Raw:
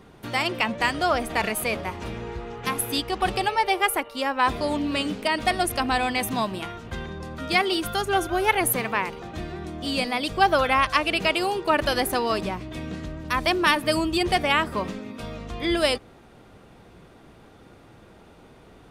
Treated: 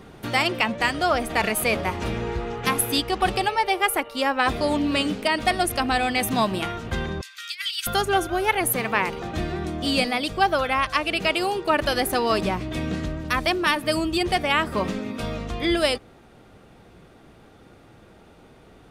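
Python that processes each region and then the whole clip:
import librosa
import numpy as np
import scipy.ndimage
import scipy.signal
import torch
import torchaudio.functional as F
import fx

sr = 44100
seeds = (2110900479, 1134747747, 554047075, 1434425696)

y = fx.chain(x, sr, fx.bessel_highpass(hz=2800.0, order=8),
    fx.peak_eq(hz=9600.0, db=-4.5, octaves=0.28),
    fx.over_compress(threshold_db=-34.0, ratio=-0.5), at=(7.21, 7.87))
y = fx.notch(y, sr, hz=1000.0, q=16.0)
y = fx.rider(y, sr, range_db=4, speed_s=0.5)
y = y * 10.0 ** (2.0 / 20.0)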